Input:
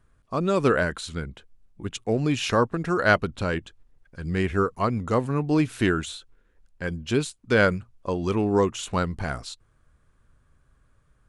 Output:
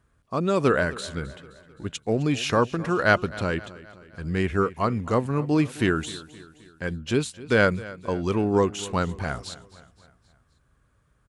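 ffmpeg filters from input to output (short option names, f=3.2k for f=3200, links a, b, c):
-af "highpass=48,aecho=1:1:261|522|783|1044:0.119|0.0618|0.0321|0.0167"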